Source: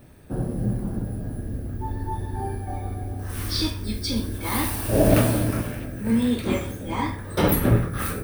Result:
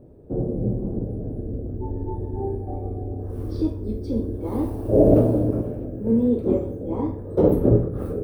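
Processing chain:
drawn EQ curve 210 Hz 0 dB, 450 Hz +9 dB, 1,900 Hz −25 dB

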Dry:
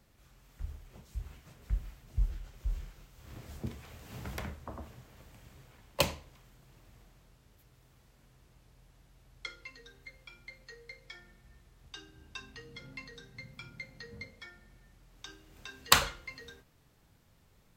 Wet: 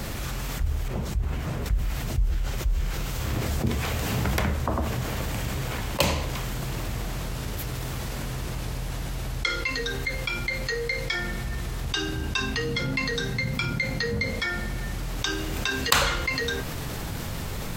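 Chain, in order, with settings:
0:00.88–0:01.66: high-shelf EQ 2,000 Hz −10 dB
envelope flattener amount 70%

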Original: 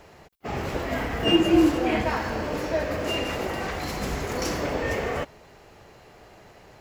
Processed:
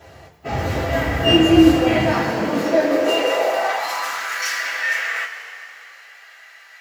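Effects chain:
coupled-rooms reverb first 0.21 s, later 2.9 s, from −18 dB, DRR −8.5 dB
high-pass filter sweep 80 Hz → 1,700 Hz, 0:01.72–0:04.46
level −2.5 dB

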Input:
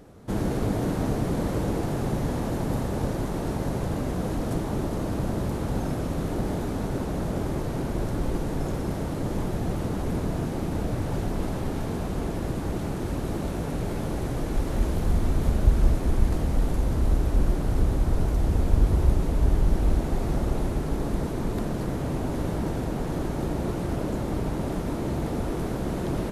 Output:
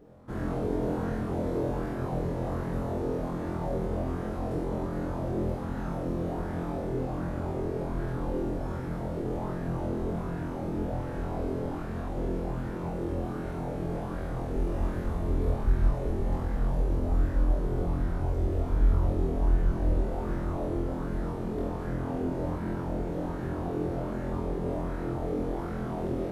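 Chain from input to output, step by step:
parametric band 11,000 Hz −10.5 dB 3 octaves
flutter between parallel walls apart 4 metres, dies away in 0.67 s
auto-filter bell 1.3 Hz 380–1,700 Hz +8 dB
level −9 dB

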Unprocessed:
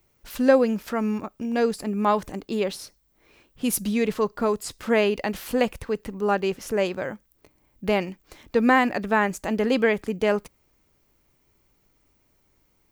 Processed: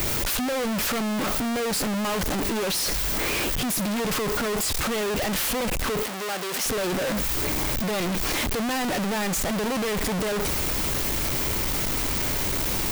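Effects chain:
sign of each sample alone
0:06.03–0:06.66: high-pass filter 670 Hz 6 dB per octave

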